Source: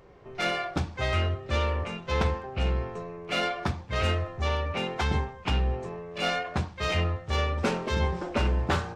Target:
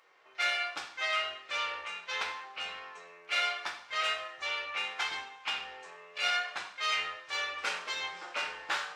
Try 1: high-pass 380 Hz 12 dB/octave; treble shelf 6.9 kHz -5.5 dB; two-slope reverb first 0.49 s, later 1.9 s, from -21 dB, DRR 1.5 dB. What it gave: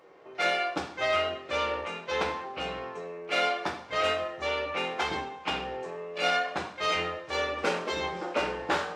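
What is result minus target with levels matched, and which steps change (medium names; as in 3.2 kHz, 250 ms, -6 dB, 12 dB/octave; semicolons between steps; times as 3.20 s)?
500 Hz band +11.5 dB
change: high-pass 1.4 kHz 12 dB/octave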